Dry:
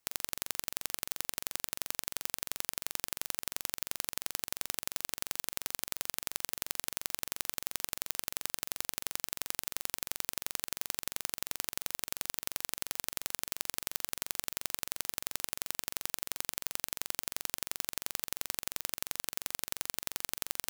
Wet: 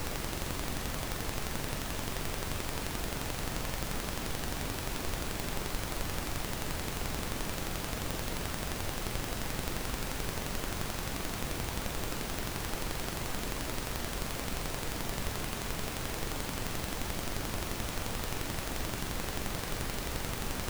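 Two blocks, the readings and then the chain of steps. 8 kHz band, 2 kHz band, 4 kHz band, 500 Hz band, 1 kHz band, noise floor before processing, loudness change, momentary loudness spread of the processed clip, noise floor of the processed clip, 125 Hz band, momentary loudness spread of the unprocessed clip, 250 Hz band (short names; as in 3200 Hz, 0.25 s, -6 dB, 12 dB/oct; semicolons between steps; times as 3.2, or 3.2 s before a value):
-3.0 dB, +4.0 dB, +0.5 dB, +11.0 dB, +7.5 dB, -78 dBFS, 0.0 dB, 0 LU, -38 dBFS, +18.5 dB, 1 LU, +14.5 dB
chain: zero-crossing step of -26 dBFS; tilt -3.5 dB/oct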